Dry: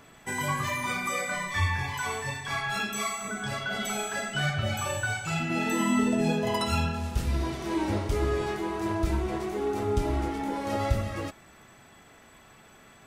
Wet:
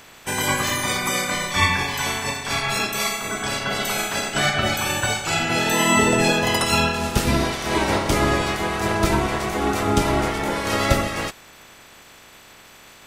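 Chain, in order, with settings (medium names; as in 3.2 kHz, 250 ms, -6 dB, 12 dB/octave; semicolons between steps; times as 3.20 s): spectral peaks clipped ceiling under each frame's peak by 17 dB; trim +7.5 dB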